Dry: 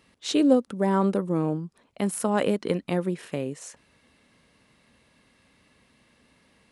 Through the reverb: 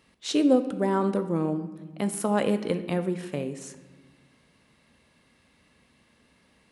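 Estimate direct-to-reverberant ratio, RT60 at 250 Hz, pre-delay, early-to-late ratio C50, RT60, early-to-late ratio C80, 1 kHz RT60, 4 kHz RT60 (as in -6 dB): 10.0 dB, 1.9 s, 12 ms, 12.0 dB, 1.3 s, 14.0 dB, 1.2 s, 0.85 s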